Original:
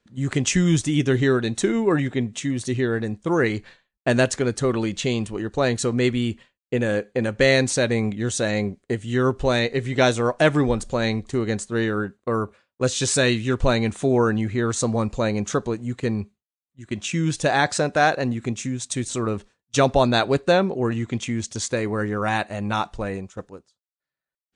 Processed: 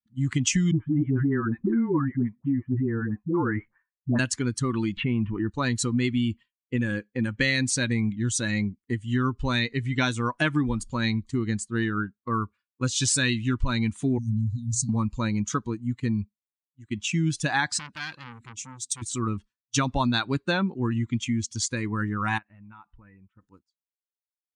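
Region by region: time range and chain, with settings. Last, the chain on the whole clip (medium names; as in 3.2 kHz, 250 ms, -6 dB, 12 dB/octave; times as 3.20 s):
0.71–4.19 s: low-pass 1.6 kHz 24 dB/octave + phase dispersion highs, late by 96 ms, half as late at 550 Hz
4.97–5.50 s: low-pass 2.3 kHz 24 dB/octave + level flattener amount 50%
14.18–14.89 s: inverse Chebyshev band-stop 310–2500 Hz + peaking EQ 290 Hz +13 dB 1 oct + hum notches 60/120 Hz
17.79–19.02 s: peaking EQ 900 Hz -13 dB 1.5 oct + transformer saturation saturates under 2.3 kHz
22.38–23.42 s: compression 3:1, threshold -34 dBFS + four-pole ladder low-pass 3.1 kHz, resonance 20%
whole clip: expander on every frequency bin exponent 1.5; high-order bell 540 Hz -13 dB 1.1 oct; compression, threshold -24 dBFS; trim +4 dB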